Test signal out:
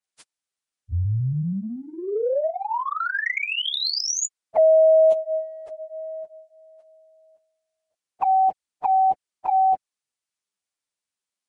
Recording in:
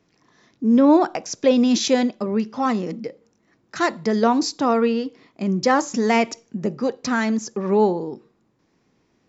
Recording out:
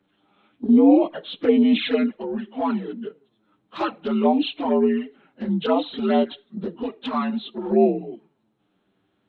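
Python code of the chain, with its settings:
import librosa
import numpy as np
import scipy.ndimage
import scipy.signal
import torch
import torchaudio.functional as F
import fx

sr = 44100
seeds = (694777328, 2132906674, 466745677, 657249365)

y = fx.partial_stretch(x, sr, pct=83)
y = fx.env_flanger(y, sr, rest_ms=10.3, full_db=-14.5)
y = F.gain(torch.from_numpy(y), 1.5).numpy()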